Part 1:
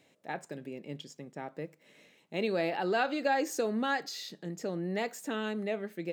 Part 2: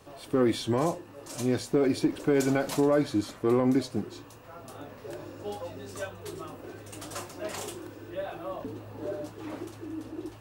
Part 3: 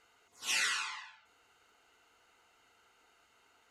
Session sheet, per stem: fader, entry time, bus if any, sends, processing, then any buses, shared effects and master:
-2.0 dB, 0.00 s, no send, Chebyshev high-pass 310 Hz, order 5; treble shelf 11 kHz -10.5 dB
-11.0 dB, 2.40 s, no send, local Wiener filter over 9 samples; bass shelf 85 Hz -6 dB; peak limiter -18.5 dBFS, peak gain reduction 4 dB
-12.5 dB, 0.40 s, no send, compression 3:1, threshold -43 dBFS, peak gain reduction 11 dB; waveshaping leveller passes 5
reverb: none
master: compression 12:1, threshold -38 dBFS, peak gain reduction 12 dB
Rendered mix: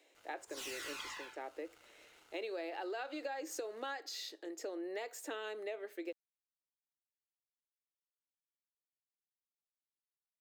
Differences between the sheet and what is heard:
stem 1: missing treble shelf 11 kHz -10.5 dB; stem 2: muted; stem 3: entry 0.40 s -> 0.15 s

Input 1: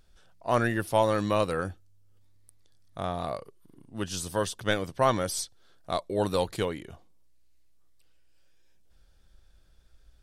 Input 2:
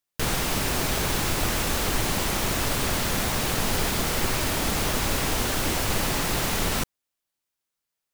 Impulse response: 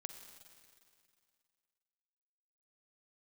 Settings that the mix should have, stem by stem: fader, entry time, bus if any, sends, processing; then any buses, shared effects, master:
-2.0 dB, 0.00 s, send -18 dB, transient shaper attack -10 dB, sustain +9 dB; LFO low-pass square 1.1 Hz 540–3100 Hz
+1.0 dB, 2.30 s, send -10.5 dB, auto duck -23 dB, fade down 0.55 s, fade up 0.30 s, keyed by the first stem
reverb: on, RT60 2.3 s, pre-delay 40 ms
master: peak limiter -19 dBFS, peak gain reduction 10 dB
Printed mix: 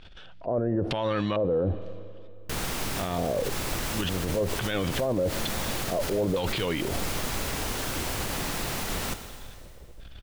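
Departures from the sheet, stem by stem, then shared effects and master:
stem 1 -2.0 dB -> +10.0 dB; reverb return +6.5 dB

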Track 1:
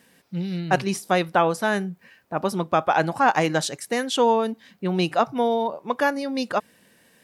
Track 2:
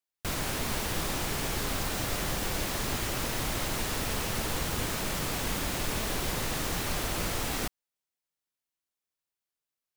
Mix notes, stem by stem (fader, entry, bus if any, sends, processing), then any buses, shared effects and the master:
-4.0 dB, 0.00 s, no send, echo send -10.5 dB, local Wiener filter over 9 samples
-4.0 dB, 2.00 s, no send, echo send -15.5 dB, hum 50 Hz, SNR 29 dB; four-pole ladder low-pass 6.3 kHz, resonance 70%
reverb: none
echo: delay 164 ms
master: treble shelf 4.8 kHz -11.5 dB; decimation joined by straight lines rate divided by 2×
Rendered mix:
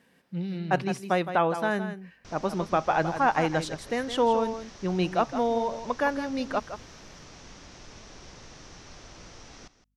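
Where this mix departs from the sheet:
stem 1: missing local Wiener filter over 9 samples; master: missing decimation joined by straight lines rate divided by 2×

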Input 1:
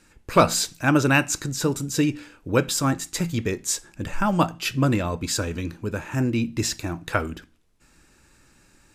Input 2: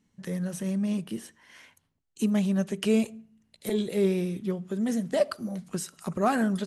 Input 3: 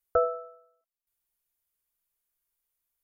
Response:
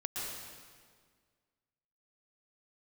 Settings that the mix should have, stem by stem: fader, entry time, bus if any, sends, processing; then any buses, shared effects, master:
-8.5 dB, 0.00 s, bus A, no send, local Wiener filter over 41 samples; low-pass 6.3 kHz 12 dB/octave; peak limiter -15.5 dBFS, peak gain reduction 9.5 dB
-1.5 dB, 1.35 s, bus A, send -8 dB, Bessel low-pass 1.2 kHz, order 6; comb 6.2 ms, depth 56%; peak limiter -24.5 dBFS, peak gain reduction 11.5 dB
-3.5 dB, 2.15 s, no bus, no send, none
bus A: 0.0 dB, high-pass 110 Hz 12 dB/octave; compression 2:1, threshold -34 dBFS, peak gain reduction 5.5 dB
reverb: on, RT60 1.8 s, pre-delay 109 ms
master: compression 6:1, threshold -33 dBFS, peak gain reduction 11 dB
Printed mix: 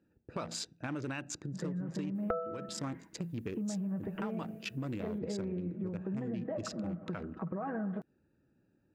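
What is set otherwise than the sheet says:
stem 2: send -8 dB -> -15.5 dB; stem 3 -3.5 dB -> +6.5 dB

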